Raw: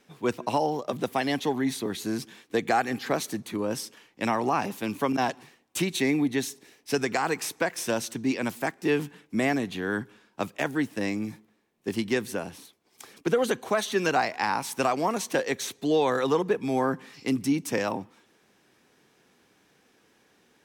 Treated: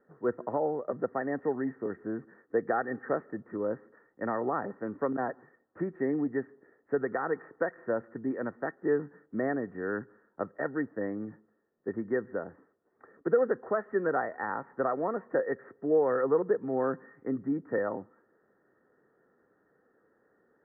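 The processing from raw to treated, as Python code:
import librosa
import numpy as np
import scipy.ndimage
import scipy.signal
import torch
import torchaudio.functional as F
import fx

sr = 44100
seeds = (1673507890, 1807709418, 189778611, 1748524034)

y = scipy.signal.sosfilt(scipy.signal.cheby1(6, 9, 1900.0, 'lowpass', fs=sr, output='sos'), x)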